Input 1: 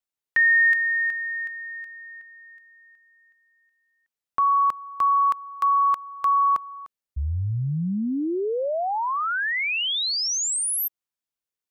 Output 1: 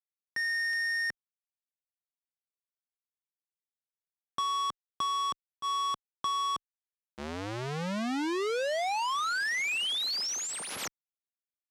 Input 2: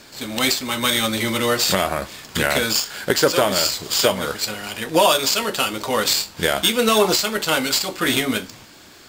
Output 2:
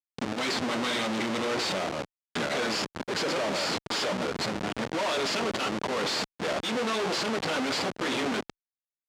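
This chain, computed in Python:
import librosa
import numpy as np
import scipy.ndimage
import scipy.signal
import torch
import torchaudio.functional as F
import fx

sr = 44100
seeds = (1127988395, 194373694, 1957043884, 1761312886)

y = fx.schmitt(x, sr, flips_db=-24.5)
y = fx.tube_stage(y, sr, drive_db=26.0, bias=0.8)
y = fx.bandpass_edges(y, sr, low_hz=200.0, high_hz=6100.0)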